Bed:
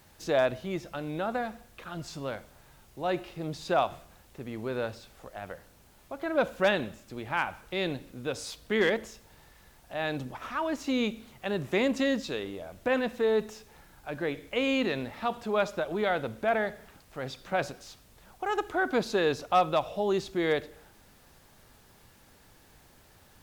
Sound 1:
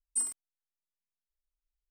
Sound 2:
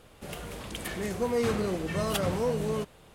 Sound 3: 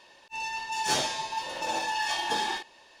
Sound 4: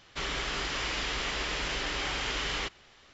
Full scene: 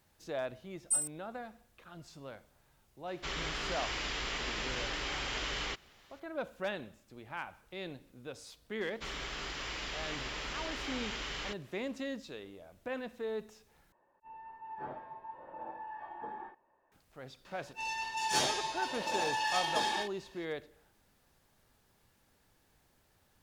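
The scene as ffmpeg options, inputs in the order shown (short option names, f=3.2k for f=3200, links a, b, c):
-filter_complex "[4:a]asplit=2[a][b];[3:a]asplit=2[c][d];[0:a]volume=-12dB[e];[1:a]highshelf=f=5.5k:g=10[f];[c]lowpass=f=1.4k:w=0.5412,lowpass=f=1.4k:w=1.3066[g];[e]asplit=2[h][i];[h]atrim=end=13.924[j];[g]atrim=end=3,asetpts=PTS-STARTPTS,volume=-12.5dB[k];[i]atrim=start=16.916[l];[f]atrim=end=1.9,asetpts=PTS-STARTPTS,volume=-7dB,afade=t=in:d=0.004:c=hsin,afade=t=out:st=1.896:d=0.004:c=hsin,adelay=750[m];[a]atrim=end=3.13,asetpts=PTS-STARTPTS,volume=-4.5dB,afade=t=in:d=0.004:c=hsin,afade=t=out:st=3.126:d=0.004:c=hsin,adelay=3070[n];[b]atrim=end=3.13,asetpts=PTS-STARTPTS,volume=-7.5dB,afade=t=in:d=0.004:c=hsin,afade=t=out:st=3.126:d=0.004:c=hsin,adelay=8850[o];[d]atrim=end=3,asetpts=PTS-STARTPTS,volume=-3.5dB,afade=t=in:d=0.004:c=hsin,afade=t=out:st=2.996:d=0.004:c=hsin,adelay=17450[p];[j][k]acrossfade=d=0.004:c1=hsin:c2=hsin[q];[q][l]acrossfade=d=0.004:c1=hsin:c2=hsin[r];[r][m][n][o][p]amix=inputs=5:normalize=0"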